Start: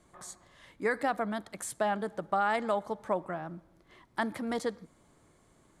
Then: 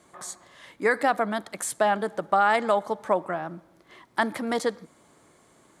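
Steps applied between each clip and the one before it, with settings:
high-pass filter 270 Hz 6 dB per octave
level +8 dB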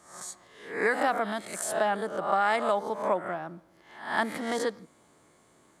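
peak hold with a rise ahead of every peak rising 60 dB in 0.54 s
level −5 dB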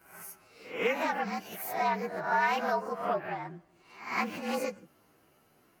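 partials spread apart or drawn together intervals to 113%
highs frequency-modulated by the lows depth 0.1 ms

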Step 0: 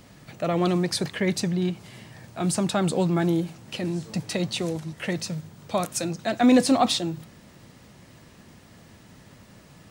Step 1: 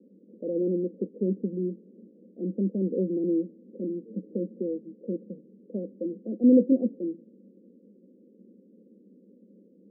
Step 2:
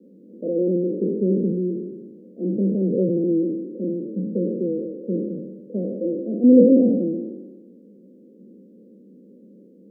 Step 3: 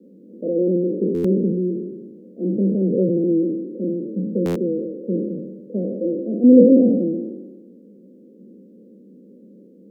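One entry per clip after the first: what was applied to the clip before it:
Chebyshev band-pass filter 190–530 Hz, order 5
peak hold with a decay on every bin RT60 1.30 s; level +4.5 dB
buffer that repeats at 0:01.14/0:04.45, samples 512, times 8; level +2 dB

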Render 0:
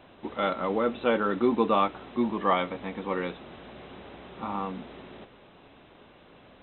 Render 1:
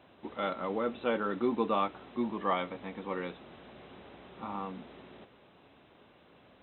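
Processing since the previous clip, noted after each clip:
high-pass filter 58 Hz
level −6 dB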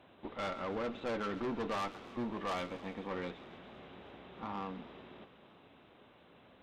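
tube saturation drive 34 dB, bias 0.55
delay with a high-pass on its return 135 ms, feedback 64%, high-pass 1,800 Hz, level −14 dB
feedback echo with a swinging delay time 316 ms, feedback 73%, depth 69 cents, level −23.5 dB
level +1 dB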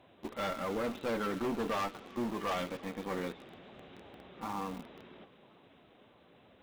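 spectral magnitudes quantised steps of 15 dB
in parallel at −7.5 dB: bit reduction 7 bits

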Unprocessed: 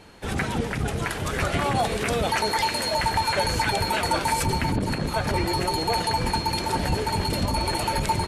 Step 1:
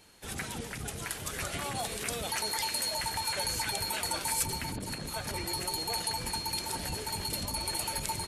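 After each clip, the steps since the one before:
first-order pre-emphasis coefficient 0.8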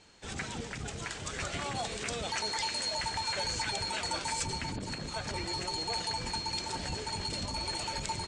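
Butterworth low-pass 8,100 Hz 48 dB per octave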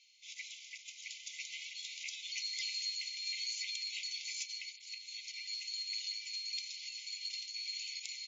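brick-wall band-pass 2,000–7,300 Hz
level −3.5 dB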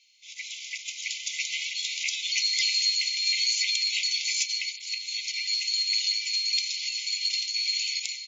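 automatic gain control gain up to 11 dB
level +3 dB

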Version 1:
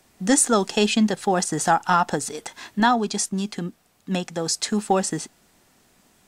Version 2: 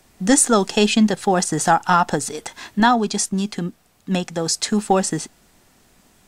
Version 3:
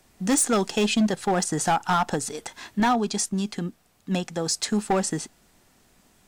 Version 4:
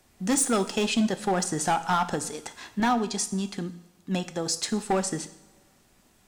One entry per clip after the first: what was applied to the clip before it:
low-shelf EQ 73 Hz +8.5 dB; level +3 dB
hard clipping −12 dBFS, distortion −13 dB; level −4.5 dB
coupled-rooms reverb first 0.65 s, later 1.9 s, from −17 dB, DRR 10.5 dB; level −2.5 dB

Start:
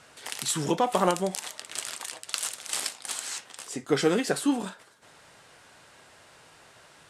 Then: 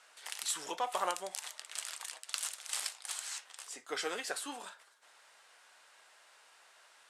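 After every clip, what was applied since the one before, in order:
high-pass filter 760 Hz 12 dB per octave
level −6.5 dB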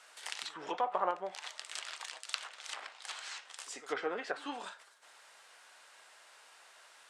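echo ahead of the sound 90 ms −19 dB
treble cut that deepens with the level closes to 1,300 Hz, closed at −33 dBFS
level +3 dB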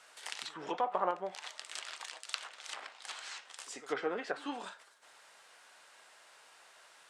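low-shelf EQ 300 Hz +8 dB
level −1 dB

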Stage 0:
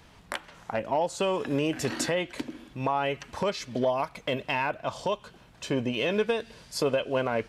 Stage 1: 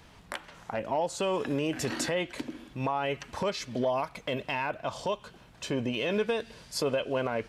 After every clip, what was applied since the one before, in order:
brickwall limiter −20.5 dBFS, peak gain reduction 4 dB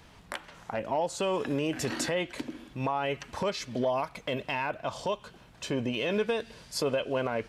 no processing that can be heard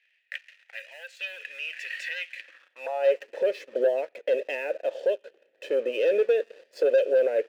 formant filter e
leveller curve on the samples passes 2
high-pass filter sweep 2,200 Hz → 380 Hz, 0:02.39–0:03.26
level +3 dB

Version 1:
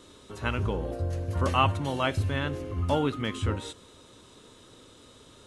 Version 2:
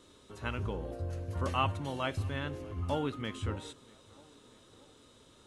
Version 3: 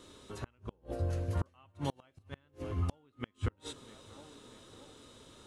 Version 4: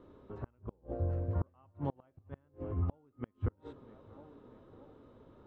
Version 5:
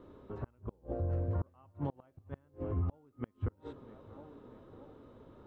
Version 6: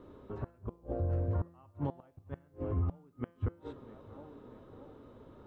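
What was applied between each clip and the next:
tape delay 635 ms, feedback 66%, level −23 dB; level −7 dB
gate with flip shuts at −26 dBFS, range −36 dB; level +4 dB
low-pass filter 1,000 Hz 12 dB per octave
brickwall limiter −28.5 dBFS, peak gain reduction 7 dB; level +2.5 dB
hum removal 170.8 Hz, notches 27; level +1.5 dB

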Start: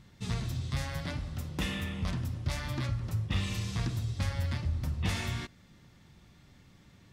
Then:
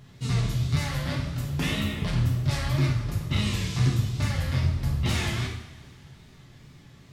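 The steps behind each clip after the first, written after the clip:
tape wow and flutter 130 cents
coupled-rooms reverb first 0.68 s, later 3 s, from −20 dB, DRR −2.5 dB
level +2 dB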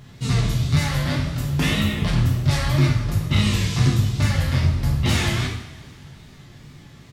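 double-tracking delay 20 ms −10.5 dB
level +6 dB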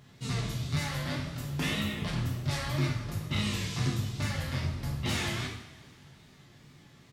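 low-shelf EQ 91 Hz −11.5 dB
level −8.5 dB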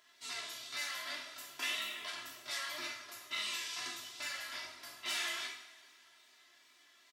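Bessel high-pass filter 1,200 Hz, order 2
comb filter 3 ms, depth 84%
level −4 dB

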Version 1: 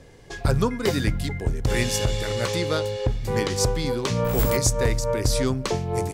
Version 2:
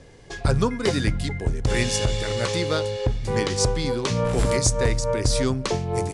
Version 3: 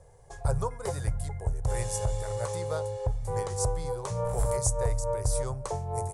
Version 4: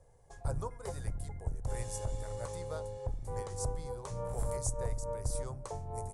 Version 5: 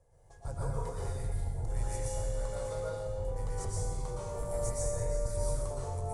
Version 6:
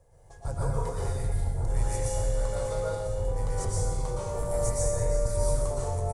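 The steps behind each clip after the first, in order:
elliptic low-pass filter 10,000 Hz, stop band 50 dB; level +1.5 dB
drawn EQ curve 100 Hz 0 dB, 160 Hz −7 dB, 250 Hz −25 dB, 490 Hz −2 dB, 870 Hz +2 dB, 1,400 Hz −8 dB, 2,800 Hz −18 dB, 4,700 Hz −14 dB, 7,500 Hz −1 dB, 12,000 Hz +8 dB; level −4.5 dB
sub-octave generator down 2 octaves, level −3 dB; level −8.5 dB
dense smooth reverb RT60 1.3 s, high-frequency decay 0.9×, pre-delay 105 ms, DRR −6.5 dB; level −5.5 dB
single-tap delay 995 ms −15 dB; level +6 dB

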